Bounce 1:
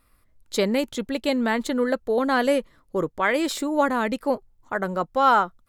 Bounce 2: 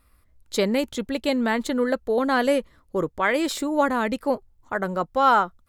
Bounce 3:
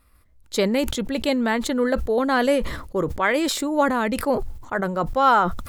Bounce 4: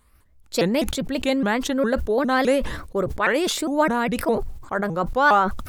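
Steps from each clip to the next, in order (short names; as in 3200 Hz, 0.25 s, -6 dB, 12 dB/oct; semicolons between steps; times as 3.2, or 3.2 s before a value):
bell 65 Hz +8 dB 0.7 oct
sustainer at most 62 dB/s; gain +1 dB
shaped vibrato saw up 4.9 Hz, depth 250 cents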